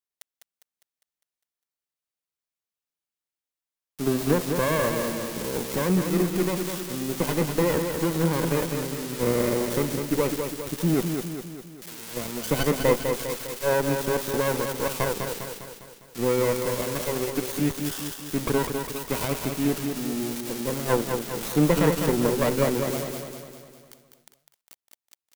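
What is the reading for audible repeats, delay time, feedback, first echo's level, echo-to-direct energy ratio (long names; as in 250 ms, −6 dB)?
6, 202 ms, 53%, −6.0 dB, −4.5 dB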